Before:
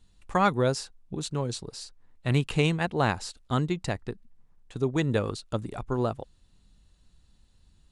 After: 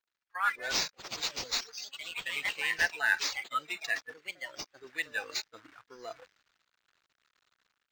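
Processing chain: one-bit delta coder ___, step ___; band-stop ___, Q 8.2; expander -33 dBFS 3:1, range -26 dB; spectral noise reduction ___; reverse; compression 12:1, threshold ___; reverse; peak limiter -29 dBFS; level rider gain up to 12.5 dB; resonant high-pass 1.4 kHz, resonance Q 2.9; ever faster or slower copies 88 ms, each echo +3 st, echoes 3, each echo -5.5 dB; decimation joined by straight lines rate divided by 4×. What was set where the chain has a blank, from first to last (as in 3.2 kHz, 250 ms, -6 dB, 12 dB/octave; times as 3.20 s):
64 kbps, -35 dBFS, 7.9 kHz, 24 dB, -36 dBFS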